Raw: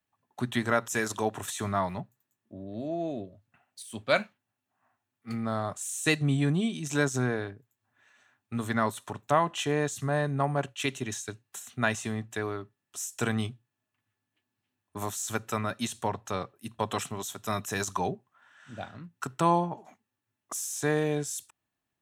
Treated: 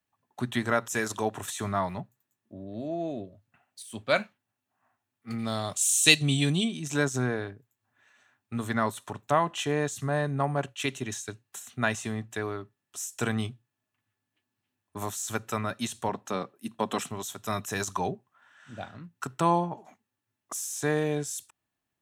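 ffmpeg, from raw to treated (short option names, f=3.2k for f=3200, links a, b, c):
-filter_complex "[0:a]asplit=3[a][b][c];[a]afade=t=out:st=5.38:d=0.02[d];[b]highshelf=f=2.2k:t=q:w=1.5:g=10.5,afade=t=in:st=5.38:d=0.02,afade=t=out:st=6.63:d=0.02[e];[c]afade=t=in:st=6.63:d=0.02[f];[d][e][f]amix=inputs=3:normalize=0,asettb=1/sr,asplit=3[g][h][i];[g]atrim=end=16.094[j];[h]atrim=start=16.09:end=17.08,asetpts=PTS-STARTPTS,afade=t=in:d=0.004:c=qsin,afade=t=out:st=0.986:d=0.004:c=qsin,highpass=f=210:t=q:w=1.7[k];[i]atrim=start=17.076[l];[j][k]acrossfade=d=0.004:c1=hsin:c2=qsin[m];[m][l]acrossfade=d=0.004:c1=qsin:c2=hsin"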